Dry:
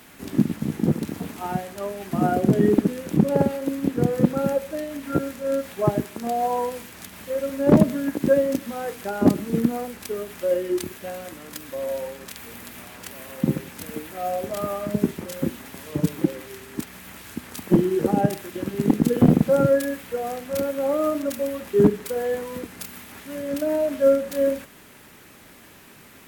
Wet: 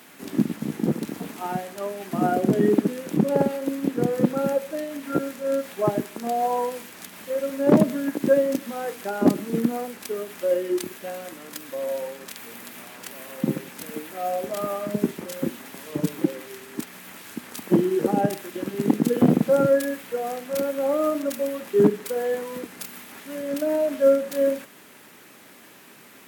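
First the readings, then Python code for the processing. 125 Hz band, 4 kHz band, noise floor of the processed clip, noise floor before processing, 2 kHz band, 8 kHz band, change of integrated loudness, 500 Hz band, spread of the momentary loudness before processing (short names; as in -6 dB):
-5.0 dB, 0.0 dB, -49 dBFS, -48 dBFS, 0.0 dB, 0.0 dB, -1.0 dB, 0.0 dB, 17 LU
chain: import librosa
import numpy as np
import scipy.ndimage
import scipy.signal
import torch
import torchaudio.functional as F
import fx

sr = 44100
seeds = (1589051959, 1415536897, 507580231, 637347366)

y = scipy.signal.sosfilt(scipy.signal.butter(2, 190.0, 'highpass', fs=sr, output='sos'), x)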